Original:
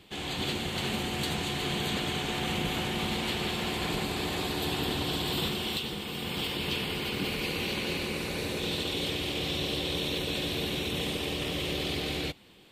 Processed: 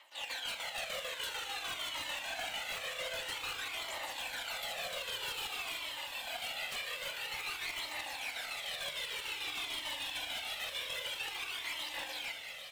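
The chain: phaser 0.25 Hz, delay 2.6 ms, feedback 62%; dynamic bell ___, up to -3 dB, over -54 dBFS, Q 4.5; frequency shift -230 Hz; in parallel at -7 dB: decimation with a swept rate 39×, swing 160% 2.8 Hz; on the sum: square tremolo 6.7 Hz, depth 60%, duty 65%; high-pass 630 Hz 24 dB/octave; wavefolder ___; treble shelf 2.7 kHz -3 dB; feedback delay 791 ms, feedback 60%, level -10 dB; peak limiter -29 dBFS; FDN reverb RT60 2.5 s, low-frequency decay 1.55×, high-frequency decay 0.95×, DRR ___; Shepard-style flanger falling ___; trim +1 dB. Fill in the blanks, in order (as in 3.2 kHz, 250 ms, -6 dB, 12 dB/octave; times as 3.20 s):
1.3 kHz, -28 dBFS, 7.5 dB, 0.51 Hz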